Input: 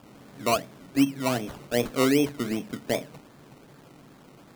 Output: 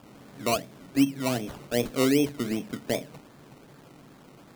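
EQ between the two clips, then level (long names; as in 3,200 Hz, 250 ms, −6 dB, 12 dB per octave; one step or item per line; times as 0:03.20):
dynamic equaliser 1,200 Hz, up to −5 dB, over −37 dBFS, Q 0.86
0.0 dB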